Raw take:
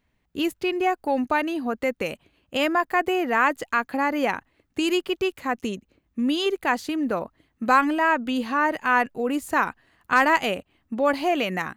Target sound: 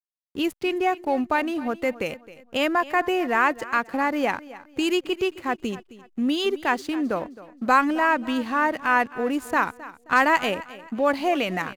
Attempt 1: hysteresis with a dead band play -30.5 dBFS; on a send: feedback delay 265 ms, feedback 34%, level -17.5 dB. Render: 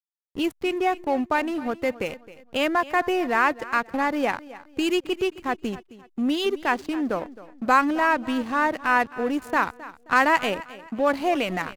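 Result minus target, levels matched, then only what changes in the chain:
hysteresis with a dead band: distortion +9 dB
change: hysteresis with a dead band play -40 dBFS

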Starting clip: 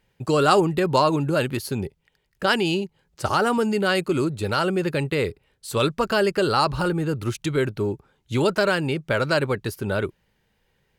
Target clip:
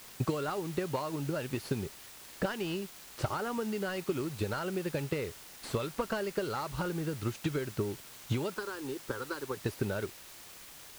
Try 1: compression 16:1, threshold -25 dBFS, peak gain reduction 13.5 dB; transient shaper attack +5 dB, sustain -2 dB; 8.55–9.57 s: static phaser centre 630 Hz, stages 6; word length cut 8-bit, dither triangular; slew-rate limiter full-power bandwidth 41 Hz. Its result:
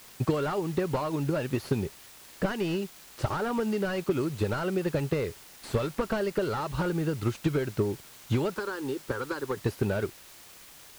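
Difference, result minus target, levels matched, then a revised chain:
compression: peak gain reduction -6 dB
compression 16:1, threshold -31.5 dBFS, peak gain reduction 19.5 dB; transient shaper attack +5 dB, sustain -2 dB; 8.55–9.57 s: static phaser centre 630 Hz, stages 6; word length cut 8-bit, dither triangular; slew-rate limiter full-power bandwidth 41 Hz

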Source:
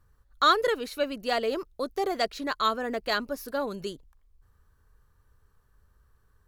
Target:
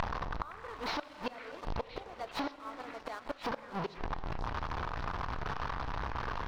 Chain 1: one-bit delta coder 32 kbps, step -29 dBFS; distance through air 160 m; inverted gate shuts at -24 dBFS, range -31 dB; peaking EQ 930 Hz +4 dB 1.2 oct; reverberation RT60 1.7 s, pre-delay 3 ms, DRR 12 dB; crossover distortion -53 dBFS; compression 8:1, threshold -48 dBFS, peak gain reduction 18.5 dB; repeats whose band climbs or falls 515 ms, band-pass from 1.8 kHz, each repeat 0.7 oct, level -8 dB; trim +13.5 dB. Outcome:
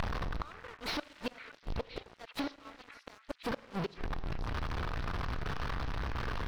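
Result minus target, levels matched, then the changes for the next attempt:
1 kHz band -4.5 dB; crossover distortion: distortion +6 dB
change: peaking EQ 930 Hz +13.5 dB 1.2 oct; change: crossover distortion -59 dBFS

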